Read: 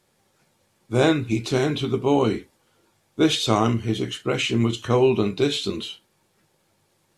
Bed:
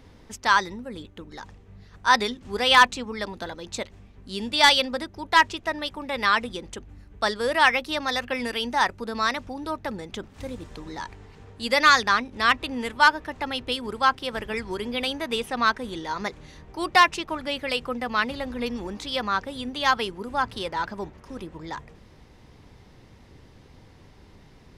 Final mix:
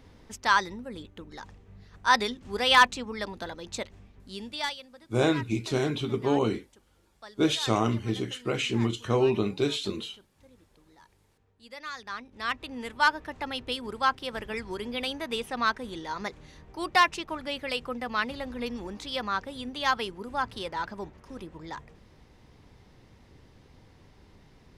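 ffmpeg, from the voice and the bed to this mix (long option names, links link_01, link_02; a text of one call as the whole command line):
ffmpeg -i stem1.wav -i stem2.wav -filter_complex "[0:a]adelay=4200,volume=-5.5dB[link_01];[1:a]volume=15dB,afade=type=out:start_time=4.03:duration=0.74:silence=0.105925,afade=type=in:start_time=11.93:duration=1.3:silence=0.125893[link_02];[link_01][link_02]amix=inputs=2:normalize=0" out.wav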